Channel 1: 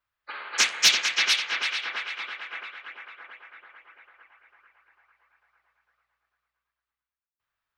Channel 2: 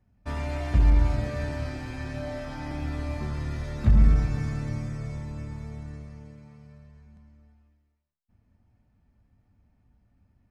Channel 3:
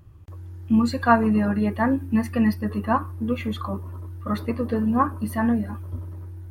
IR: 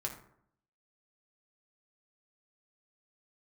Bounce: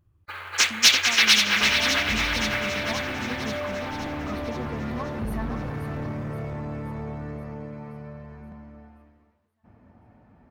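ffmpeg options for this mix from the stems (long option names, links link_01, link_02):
-filter_complex "[0:a]agate=range=-11dB:threshold=-57dB:ratio=16:detection=peak,acrusher=bits=5:mode=log:mix=0:aa=0.000001,volume=0dB,asplit=2[link_01][link_02];[link_02]volume=-11.5dB[link_03];[1:a]asplit=2[link_04][link_05];[link_05]highpass=frequency=720:poles=1,volume=41dB,asoftclip=type=tanh:threshold=-7.5dB[link_06];[link_04][link_06]amix=inputs=2:normalize=0,lowpass=frequency=1200:poles=1,volume=-6dB,highshelf=frequency=2200:gain=-11.5,acompressor=threshold=-29dB:ratio=1.5,adelay=1350,volume=-17.5dB[link_07];[2:a]acompressor=threshold=-23dB:ratio=6,volume=-15.5dB,asplit=2[link_08][link_09];[link_09]volume=-9dB[link_10];[link_03][link_10]amix=inputs=2:normalize=0,aecho=0:1:526|1052|1578|2104|2630|3156|3682|4208|4734:1|0.57|0.325|0.185|0.106|0.0602|0.0343|0.0195|0.0111[link_11];[link_01][link_07][link_08][link_11]amix=inputs=4:normalize=0,dynaudnorm=framelen=430:gausssize=5:maxgain=8dB"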